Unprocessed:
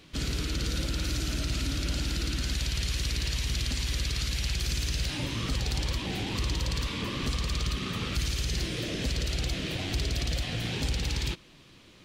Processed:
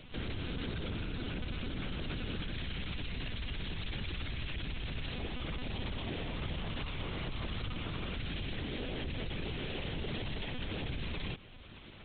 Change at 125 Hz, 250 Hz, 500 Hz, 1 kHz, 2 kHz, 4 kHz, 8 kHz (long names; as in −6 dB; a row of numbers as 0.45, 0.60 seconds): −8.5 dB, −5.5 dB, −4.0 dB, −5.5 dB, −6.0 dB, −10.0 dB, below −40 dB